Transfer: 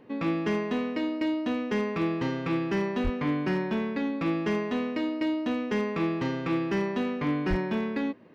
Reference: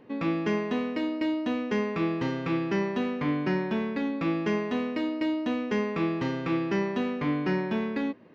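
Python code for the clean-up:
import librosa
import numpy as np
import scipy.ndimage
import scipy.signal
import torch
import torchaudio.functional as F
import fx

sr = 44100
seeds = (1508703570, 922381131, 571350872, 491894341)

y = fx.fix_declip(x, sr, threshold_db=-20.5)
y = fx.fix_deplosive(y, sr, at_s=(3.03, 7.49))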